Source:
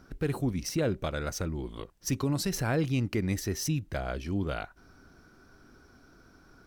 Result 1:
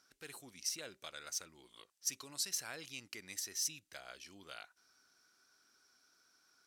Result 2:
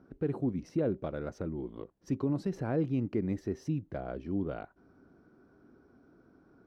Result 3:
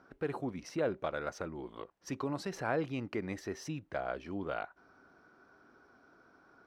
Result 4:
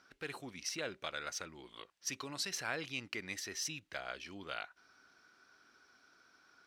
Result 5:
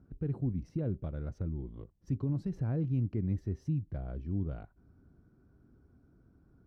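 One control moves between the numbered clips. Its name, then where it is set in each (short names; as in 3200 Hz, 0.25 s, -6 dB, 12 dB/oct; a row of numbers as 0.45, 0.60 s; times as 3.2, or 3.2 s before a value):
band-pass, frequency: 7700, 320, 860, 3000, 100 Hz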